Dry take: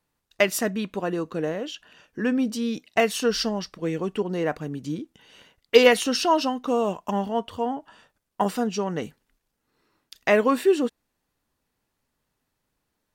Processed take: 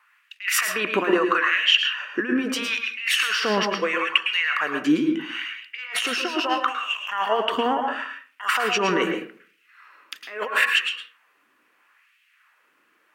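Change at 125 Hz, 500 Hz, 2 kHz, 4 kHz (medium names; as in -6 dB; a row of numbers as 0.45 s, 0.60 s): -6.5 dB, -4.5 dB, +8.5 dB, +8.0 dB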